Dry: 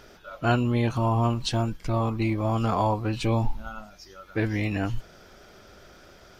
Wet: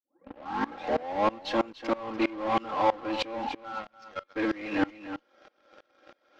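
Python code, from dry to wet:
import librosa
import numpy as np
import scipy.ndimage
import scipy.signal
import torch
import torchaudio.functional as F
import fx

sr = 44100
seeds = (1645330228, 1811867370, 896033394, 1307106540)

p1 = fx.tape_start_head(x, sr, length_s=1.38)
p2 = scipy.signal.sosfilt(scipy.signal.butter(4, 320.0, 'highpass', fs=sr, output='sos'), p1)
p3 = p2 + 0.87 * np.pad(p2, (int(3.7 * sr / 1000.0), 0))[:len(p2)]
p4 = fx.fuzz(p3, sr, gain_db=37.0, gate_db=-42.0)
p5 = p3 + (p4 * librosa.db_to_amplitude(-8.0))
p6 = fx.air_absorb(p5, sr, metres=210.0)
p7 = p6 + fx.echo_single(p6, sr, ms=292, db=-11.0, dry=0)
p8 = fx.tremolo_decay(p7, sr, direction='swelling', hz=3.1, depth_db=24)
y = p8 * librosa.db_to_amplitude(-1.5)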